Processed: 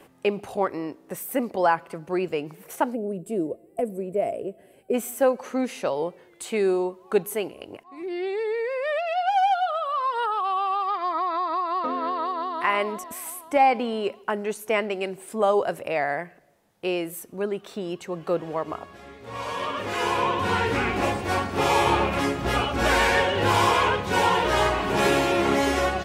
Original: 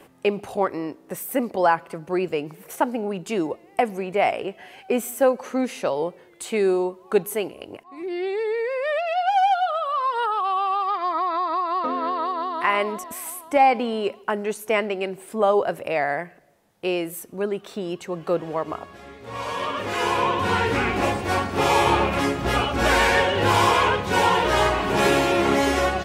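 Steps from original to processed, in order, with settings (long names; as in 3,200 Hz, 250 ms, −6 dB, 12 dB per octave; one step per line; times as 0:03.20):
0:02.94–0:04.94: gain on a spectral selection 700–7,400 Hz −17 dB
0:14.83–0:15.82: dynamic equaliser 8,000 Hz, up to +6 dB, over −48 dBFS, Q 0.78
level −2 dB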